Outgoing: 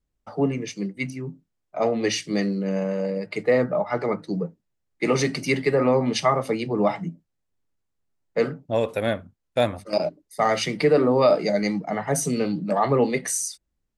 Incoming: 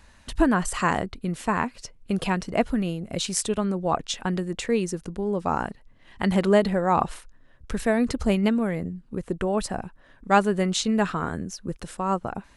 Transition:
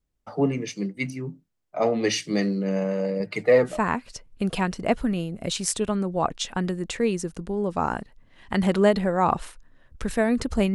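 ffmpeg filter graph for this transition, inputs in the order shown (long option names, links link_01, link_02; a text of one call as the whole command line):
ffmpeg -i cue0.wav -i cue1.wav -filter_complex "[0:a]asettb=1/sr,asplit=3[link_01][link_02][link_03];[link_01]atrim=end=3.204[link_04];[link_02]atrim=start=3.2:end=3.8,asetpts=PTS-STARTPTS,afade=type=in:duration=0.004:curve=qsin,afade=type=out:start_time=0.596:duration=0.004:curve=qsin,aphaser=in_gain=1:out_gain=1:delay=4:decay=0.44:speed=0.69:type=triangular[link_05];[link_03]atrim=start=3.796[link_06];[link_04][link_05]acrossfade=duration=0.004:curve1=hsin:curve2=qsin[link_07];[link_07][link_06]acrossfade=duration=0.004:curve1=qsin:curve2=hsin,apad=whole_dur=10.74,atrim=end=10.74,atrim=end=3.8,asetpts=PTS-STARTPTS[link_08];[1:a]atrim=start=1.29:end=8.43,asetpts=PTS-STARTPTS[link_09];[link_08][link_09]acrossfade=duration=0.2:curve1=tri:curve2=tri" out.wav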